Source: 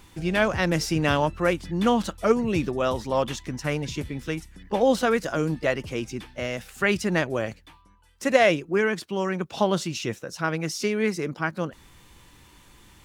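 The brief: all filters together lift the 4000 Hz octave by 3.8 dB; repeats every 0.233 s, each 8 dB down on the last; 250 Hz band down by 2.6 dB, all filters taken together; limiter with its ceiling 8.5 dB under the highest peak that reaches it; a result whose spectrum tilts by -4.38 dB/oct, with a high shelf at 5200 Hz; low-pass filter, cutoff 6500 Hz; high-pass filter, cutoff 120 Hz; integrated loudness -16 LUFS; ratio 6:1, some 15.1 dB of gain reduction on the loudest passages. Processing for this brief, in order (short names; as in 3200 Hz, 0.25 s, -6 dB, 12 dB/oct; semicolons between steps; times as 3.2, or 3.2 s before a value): HPF 120 Hz; LPF 6500 Hz; bell 250 Hz -3 dB; bell 4000 Hz +7.5 dB; high shelf 5200 Hz -3.5 dB; compressor 6:1, threshold -31 dBFS; limiter -25 dBFS; feedback echo 0.233 s, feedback 40%, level -8 dB; gain +20.5 dB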